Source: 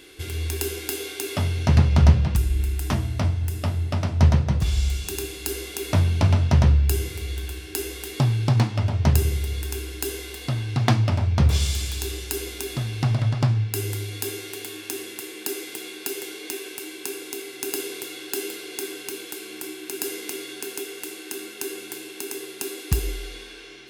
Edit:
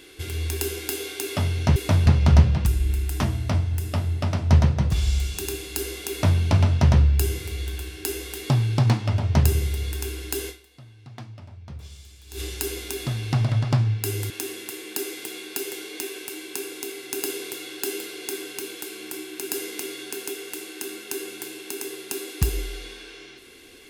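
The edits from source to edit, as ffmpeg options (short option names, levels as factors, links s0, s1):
-filter_complex "[0:a]asplit=6[s0][s1][s2][s3][s4][s5];[s0]atrim=end=1.762[s6];[s1]atrim=start=5.798:end=6.102[s7];[s2]atrim=start=1.758:end=10.67,asetpts=PTS-STARTPTS,afade=t=out:st=8.432:d=0.48:c=exp:silence=0.0891251[s8];[s3]atrim=start=10.67:end=11.62,asetpts=PTS-STARTPTS,volume=0.0891[s9];[s4]atrim=start=11.62:end=14.002,asetpts=PTS-STARTPTS,afade=t=in:d=0.48:c=exp:silence=0.0891251[s10];[s5]atrim=start=14.798[s11];[s6][s7]acrossfade=d=0.004:c1=hsin:c2=hsin[s12];[s8][s9][s10]concat=n=3:v=0:a=1[s13];[s12][s13]acrossfade=d=0.004:c1=hsin:c2=hsin[s14];[s14][s11]acrossfade=d=0.004:c1=hsin:c2=hsin"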